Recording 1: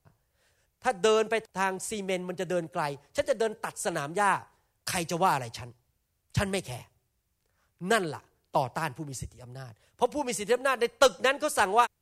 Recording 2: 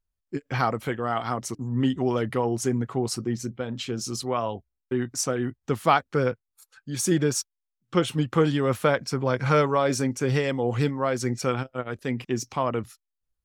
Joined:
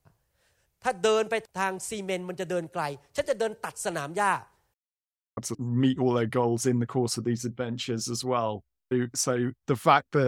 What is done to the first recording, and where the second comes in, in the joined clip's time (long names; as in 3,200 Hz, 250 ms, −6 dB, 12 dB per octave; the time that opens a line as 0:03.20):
recording 1
0:04.74–0:05.37: silence
0:05.37: continue with recording 2 from 0:01.37